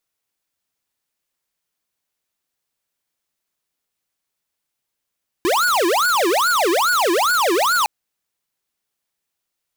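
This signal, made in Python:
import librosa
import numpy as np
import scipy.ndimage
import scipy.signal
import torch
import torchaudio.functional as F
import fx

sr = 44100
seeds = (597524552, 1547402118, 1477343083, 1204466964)

y = fx.siren(sr, length_s=2.41, kind='wail', low_hz=332.0, high_hz=1470.0, per_s=2.4, wave='square', level_db=-17.0)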